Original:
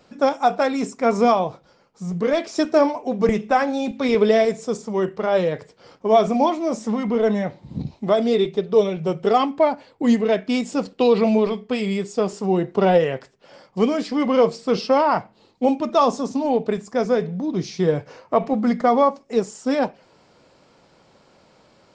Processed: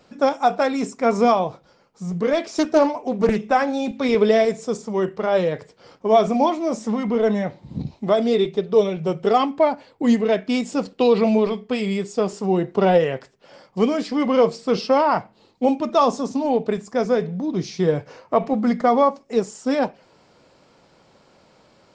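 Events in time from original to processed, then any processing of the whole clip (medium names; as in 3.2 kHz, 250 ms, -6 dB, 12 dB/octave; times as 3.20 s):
2.48–3.36 s: loudspeaker Doppler distortion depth 0.33 ms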